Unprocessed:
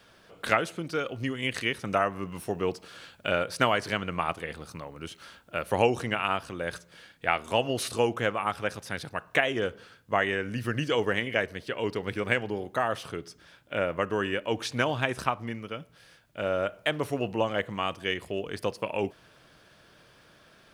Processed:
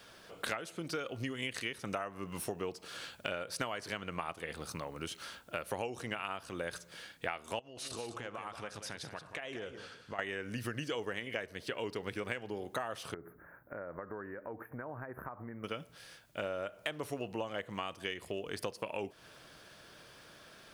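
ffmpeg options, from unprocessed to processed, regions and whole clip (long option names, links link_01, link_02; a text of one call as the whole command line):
ffmpeg -i in.wav -filter_complex "[0:a]asettb=1/sr,asplit=3[link_01][link_02][link_03];[link_01]atrim=end=7.594[link_04];[link_02]atrim=start=7.59:end=10.19,asetpts=PTS-STARTPTS,afade=type=in:duration=0.004:curve=qsin,afade=type=out:start_time=2.596:duration=0.004:curve=qsin,lowpass=8800,acompressor=threshold=-42dB:ratio=4:attack=3.2:release=140:knee=1:detection=peak,aecho=1:1:181:0.335,atrim=end_sample=114660[link_05];[link_03]atrim=start=10.186[link_06];[link_04][link_05]acrossfade=duration=0.004:curve1=hsin:curve2=qsin[link_07];[link_07][link_06]acrossfade=duration=0.004:curve1=qsin:curve2=hsin,asettb=1/sr,asplit=3[link_08][link_09][link_10];[link_08]atrim=end=13.144[link_11];[link_09]atrim=start=13.14:end=15.64,asetpts=PTS-STARTPTS,afade=type=in:duration=0.004:curve=qsin,afade=type=out:start_time=2.496:duration=0.004:curve=qsin,acompressor=threshold=-40dB:ratio=6:attack=3.2:release=140:knee=1:detection=peak,asuperstop=centerf=5300:order=12:qfactor=0.5[link_12];[link_10]atrim=start=15.636[link_13];[link_11][link_12]acrossfade=duration=0.004:curve1=hsin:curve2=qsin[link_14];[link_14][link_13]acrossfade=duration=0.004:curve1=qsin:curve2=hsin,bass=frequency=250:gain=-3,treble=frequency=4000:gain=4,acompressor=threshold=-36dB:ratio=6,volume=1dB" out.wav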